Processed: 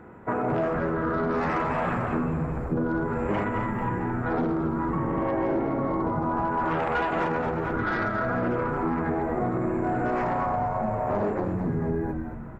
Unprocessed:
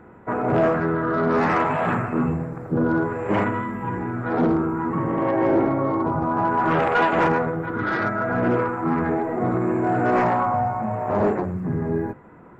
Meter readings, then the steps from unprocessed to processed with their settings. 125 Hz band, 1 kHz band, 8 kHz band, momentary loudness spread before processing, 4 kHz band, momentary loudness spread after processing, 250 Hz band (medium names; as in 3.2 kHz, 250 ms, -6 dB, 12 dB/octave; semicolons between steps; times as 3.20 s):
-3.5 dB, -5.0 dB, no reading, 7 LU, -6.0 dB, 2 LU, -4.5 dB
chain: on a send: frequency-shifting echo 221 ms, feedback 48%, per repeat -92 Hz, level -9 dB; on the sum: compression, threshold -23 dBFS, peak gain reduction 9 dB